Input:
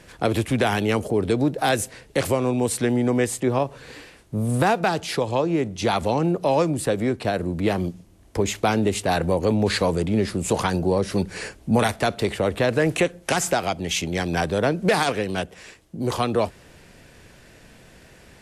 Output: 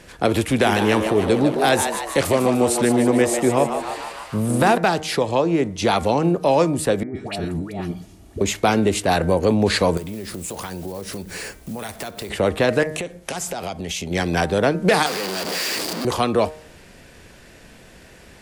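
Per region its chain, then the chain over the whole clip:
0.41–4.78 s: frequency-shifting echo 150 ms, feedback 57%, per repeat +110 Hz, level -7.5 dB + tape noise reduction on one side only encoder only
7.03–8.41 s: compressor with a negative ratio -30 dBFS + comb of notches 520 Hz + phase dispersion highs, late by 126 ms, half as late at 890 Hz
9.97–12.30 s: block-companded coder 5-bit + treble shelf 8.8 kHz +10 dB + compression 8:1, threshold -30 dBFS
12.83–14.11 s: dynamic bell 1.7 kHz, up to -5 dB, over -35 dBFS, Q 0.97 + compression 12:1, threshold -26 dBFS + band-stop 320 Hz, Q 8.4
15.06–16.05 s: one-bit comparator + Chebyshev high-pass 260 Hz + peaking EQ 4.7 kHz +12 dB 0.22 oct
whole clip: peaking EQ 120 Hz -4.5 dB 0.44 oct; de-hum 154.8 Hz, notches 15; trim +3.5 dB

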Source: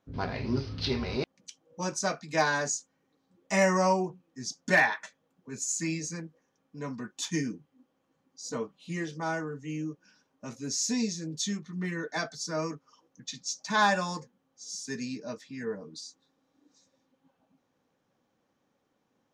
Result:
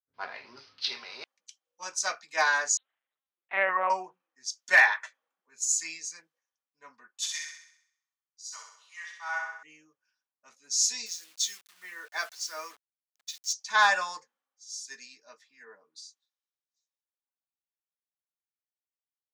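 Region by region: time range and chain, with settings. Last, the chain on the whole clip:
2.77–3.90 s: hum notches 60/120/180/240/300/360/420/480/540/600 Hz + LPC vocoder at 8 kHz pitch kept
7.17–9.63 s: high-pass 840 Hz 24 dB/octave + flutter echo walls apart 11.1 m, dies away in 1 s
11.06–13.53 s: peaking EQ 110 Hz -13.5 dB 1.6 oct + word length cut 8-bit, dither none
whole clip: high-pass 1.1 kHz 12 dB/octave; three bands expanded up and down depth 70%

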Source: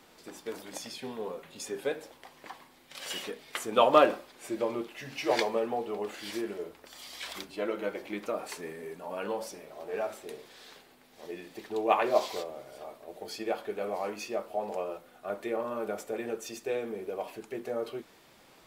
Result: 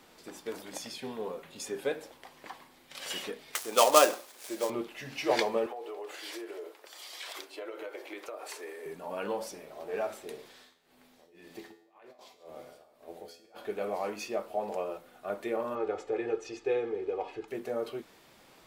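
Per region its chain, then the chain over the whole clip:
3.55–4.70 s: dead-time distortion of 0.083 ms + tone controls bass -15 dB, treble +10 dB
5.66–8.86 s: steep high-pass 340 Hz + compression, threshold -37 dBFS
10.51–13.65 s: compressor with a negative ratio -40 dBFS + tremolo 1.9 Hz, depth 89% + feedback comb 84 Hz, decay 0.63 s, mix 70%
15.75–17.48 s: distance through air 140 m + comb 2.4 ms, depth 72%
whole clip: none

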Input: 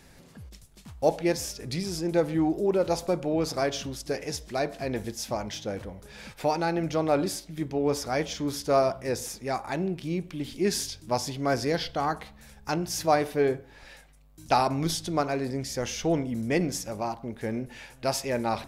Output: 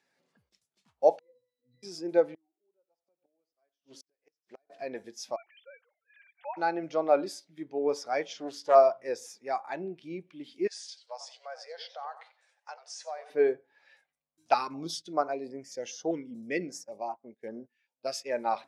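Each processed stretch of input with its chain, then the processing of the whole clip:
1.19–1.83 s: compression 4:1, threshold -25 dBFS + pitch-class resonator B, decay 0.44 s
2.34–4.70 s: delay 88 ms -12 dB + inverted gate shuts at -24 dBFS, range -34 dB + loudspeaker Doppler distortion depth 0.5 ms
5.36–6.57 s: formants replaced by sine waves + low-pass that closes with the level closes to 2.1 kHz, closed at -22 dBFS + high-pass 1.2 kHz
8.30–8.75 s: upward compressor, threshold -34 dBFS + loudspeaker Doppler distortion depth 0.61 ms
10.67–13.30 s: compression 5:1, threshold -31 dBFS + brick-wall FIR band-pass 440–10000 Hz + modulated delay 93 ms, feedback 31%, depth 206 cents, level -10 dB
14.54–18.27 s: gate -39 dBFS, range -14 dB + step-sequenced notch 5.1 Hz 700–3900 Hz
whole clip: frequency weighting A; spectral contrast expander 1.5:1

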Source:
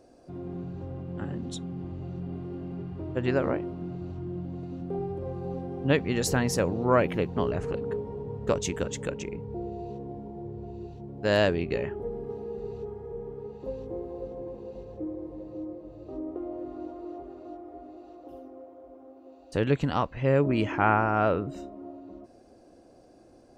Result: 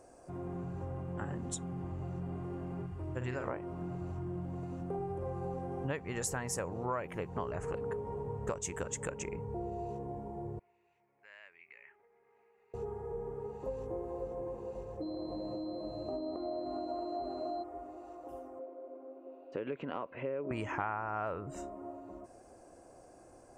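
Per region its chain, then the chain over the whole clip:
2.86–3.48 s: peaking EQ 700 Hz -7 dB 2.9 oct + doubling 48 ms -7 dB
10.59–12.74 s: compression, threshold -35 dBFS + band-pass filter 2.2 kHz, Q 5.5
15.01–17.62 s: compression, threshold -38 dBFS + whistle 4.1 kHz -48 dBFS + small resonant body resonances 230/640 Hz, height 13 dB, ringing for 25 ms
18.59–20.51 s: compression 3:1, threshold -28 dBFS + cabinet simulation 250–3100 Hz, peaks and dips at 250 Hz +6 dB, 380 Hz +5 dB, 560 Hz +4 dB, 830 Hz -9 dB, 1.2 kHz -5 dB, 1.8 kHz -7 dB
whole clip: ten-band graphic EQ 250 Hz -6 dB, 1 kHz +6 dB, 2 kHz +3 dB, 4 kHz -11 dB, 8 kHz +12 dB; compression 5:1, threshold -33 dBFS; trim -1 dB

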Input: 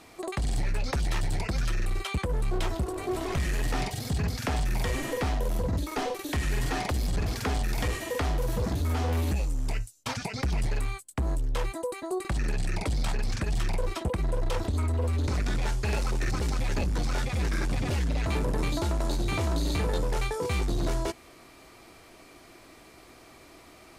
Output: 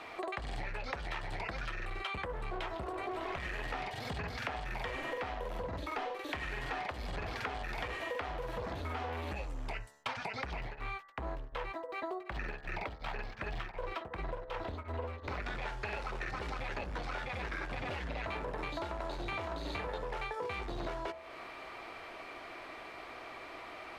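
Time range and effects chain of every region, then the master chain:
10.58–15.42 s: median filter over 5 samples + tremolo of two beating tones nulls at 2.7 Hz
whole clip: three-band isolator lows -14 dB, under 480 Hz, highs -22 dB, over 3.4 kHz; de-hum 72.54 Hz, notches 27; compression 5:1, threshold -46 dBFS; trim +9 dB

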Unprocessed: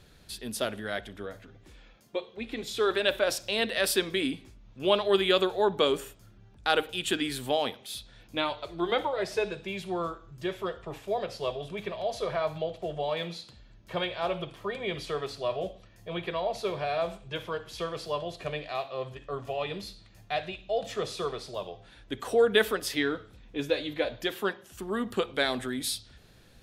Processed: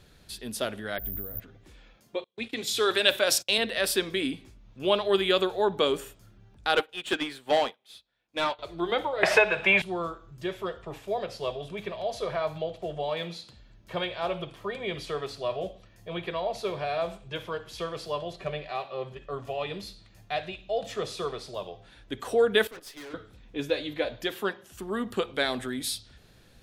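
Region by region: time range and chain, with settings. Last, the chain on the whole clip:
0.98–1.40 s: compression, threshold -45 dBFS + tilt EQ -4 dB/octave + careless resampling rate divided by 3×, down none, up zero stuff
2.24–3.58 s: gate -44 dBFS, range -33 dB + high-pass 73 Hz 24 dB/octave + treble shelf 2.4 kHz +10.5 dB
6.75–8.59 s: overdrive pedal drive 20 dB, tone 2.5 kHz, clips at -12 dBFS + upward expansion 2.5:1, over -41 dBFS
9.23–9.82 s: high-order bell 1.3 kHz +15.5 dB 2.7 oct + three bands compressed up and down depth 100%
18.33–19.29 s: treble shelf 6.1 kHz -10 dB + comb 5.2 ms, depth 50%
22.67–23.14 s: gate -34 dBFS, range -10 dB + high-pass 220 Hz + valve stage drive 41 dB, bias 0.55
whole clip: none

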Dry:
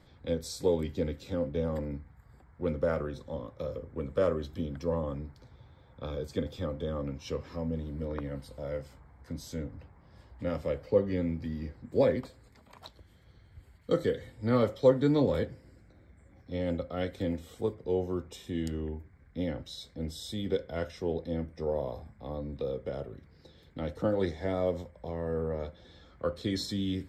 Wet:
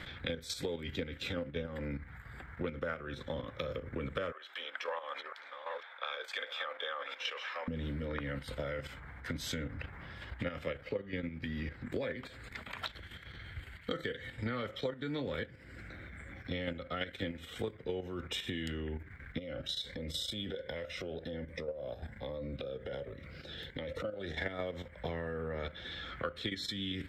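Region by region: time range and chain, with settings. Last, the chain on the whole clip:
4.32–7.68 s: chunks repeated in reverse 503 ms, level -10 dB + high-pass 690 Hz 24 dB/octave + treble shelf 4.2 kHz -10.5 dB
19.38–24.38 s: peaking EQ 550 Hz +10.5 dB 0.41 oct + compression 2.5:1, threshold -47 dBFS + Shepard-style phaser rising 1.3 Hz
whole clip: level held to a coarse grid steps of 10 dB; high-order bell 2.2 kHz +13 dB; compression 10:1, threshold -45 dBFS; trim +10.5 dB

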